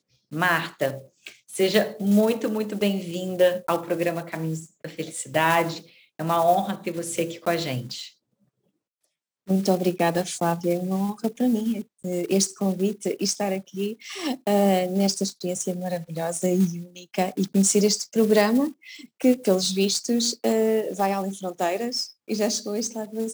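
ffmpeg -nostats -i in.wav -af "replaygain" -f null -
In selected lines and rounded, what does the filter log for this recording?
track_gain = +3.9 dB
track_peak = 0.379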